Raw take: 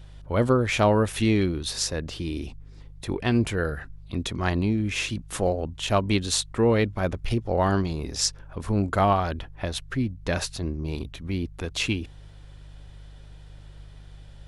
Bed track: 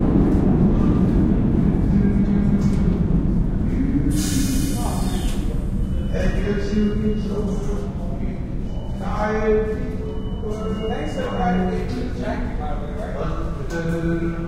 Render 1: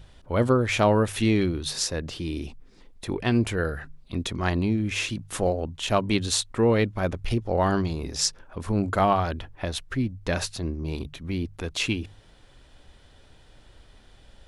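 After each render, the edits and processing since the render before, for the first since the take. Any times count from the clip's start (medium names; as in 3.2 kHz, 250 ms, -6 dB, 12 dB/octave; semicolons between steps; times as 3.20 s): de-hum 50 Hz, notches 3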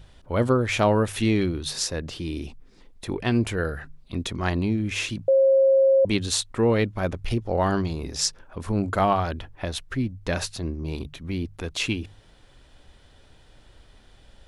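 5.28–6.05 s: bleep 538 Hz -14 dBFS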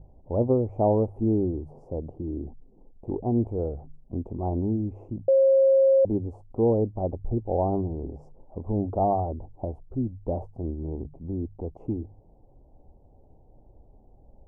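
elliptic low-pass 820 Hz, stop band 50 dB; dynamic bell 170 Hz, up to -5 dB, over -39 dBFS, Q 2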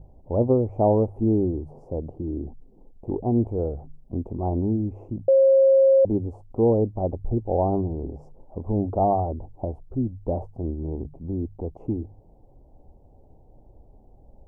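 trim +2.5 dB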